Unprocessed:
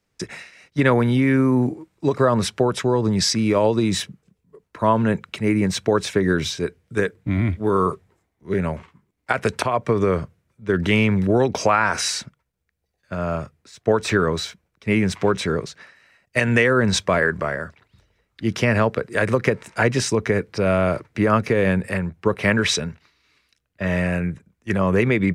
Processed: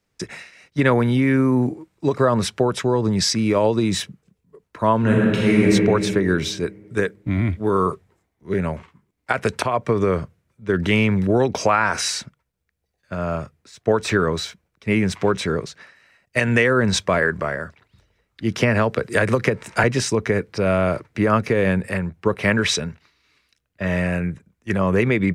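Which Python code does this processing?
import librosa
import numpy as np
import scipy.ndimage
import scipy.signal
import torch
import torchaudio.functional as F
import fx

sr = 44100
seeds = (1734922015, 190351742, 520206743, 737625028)

y = fx.reverb_throw(x, sr, start_s=4.99, length_s=0.69, rt60_s=2.2, drr_db=-5.0)
y = fx.band_squash(y, sr, depth_pct=100, at=(18.6, 19.84))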